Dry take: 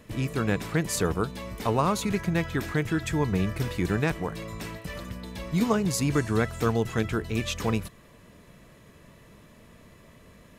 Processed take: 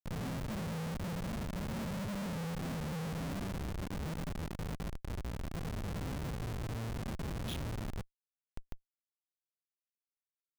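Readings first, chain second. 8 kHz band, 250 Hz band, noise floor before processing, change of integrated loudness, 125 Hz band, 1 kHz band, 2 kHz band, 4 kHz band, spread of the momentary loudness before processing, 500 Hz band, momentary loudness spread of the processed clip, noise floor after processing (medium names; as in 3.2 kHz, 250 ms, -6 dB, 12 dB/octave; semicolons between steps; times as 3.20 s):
-15.0 dB, -12.0 dB, -54 dBFS, -12.0 dB, -9.5 dB, -13.5 dB, -14.5 dB, -11.0 dB, 12 LU, -16.0 dB, 5 LU, under -85 dBFS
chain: octave divider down 1 oct, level +1 dB; low-pass sweep 220 Hz -> 2.9 kHz, 2.85–6.54 s; Chebyshev band-stop 270–3400 Hz, order 5; treble shelf 4.4 kHz -6 dB; compression 4:1, threshold -35 dBFS, peak gain reduction 16.5 dB; bass shelf 260 Hz -7 dB; on a send: delay 178 ms -20 dB; on the sum: simulated room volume 660 m³, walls furnished, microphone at 4.1 m; low-pass sweep 210 Hz -> 2.6 kHz, 3.08–4.75 s; Schmitt trigger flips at -36.5 dBFS; trim -7.5 dB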